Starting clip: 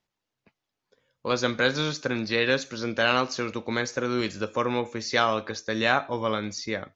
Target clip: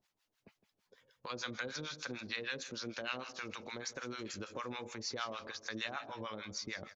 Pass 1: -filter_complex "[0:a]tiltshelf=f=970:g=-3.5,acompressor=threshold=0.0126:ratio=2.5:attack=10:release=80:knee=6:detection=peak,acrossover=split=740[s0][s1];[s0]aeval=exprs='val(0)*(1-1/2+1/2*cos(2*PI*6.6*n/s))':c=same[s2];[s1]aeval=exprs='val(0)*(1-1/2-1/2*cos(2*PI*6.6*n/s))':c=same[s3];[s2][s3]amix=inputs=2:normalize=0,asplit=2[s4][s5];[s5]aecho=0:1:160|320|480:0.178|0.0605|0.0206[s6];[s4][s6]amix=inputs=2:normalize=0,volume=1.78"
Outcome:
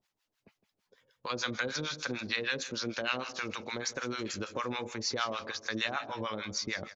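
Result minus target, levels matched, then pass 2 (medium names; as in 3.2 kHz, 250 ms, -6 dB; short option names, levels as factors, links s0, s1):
compression: peak gain reduction -7 dB
-filter_complex "[0:a]tiltshelf=f=970:g=-3.5,acompressor=threshold=0.00316:ratio=2.5:attack=10:release=80:knee=6:detection=peak,acrossover=split=740[s0][s1];[s0]aeval=exprs='val(0)*(1-1/2+1/2*cos(2*PI*6.6*n/s))':c=same[s2];[s1]aeval=exprs='val(0)*(1-1/2-1/2*cos(2*PI*6.6*n/s))':c=same[s3];[s2][s3]amix=inputs=2:normalize=0,asplit=2[s4][s5];[s5]aecho=0:1:160|320|480:0.178|0.0605|0.0206[s6];[s4][s6]amix=inputs=2:normalize=0,volume=1.78"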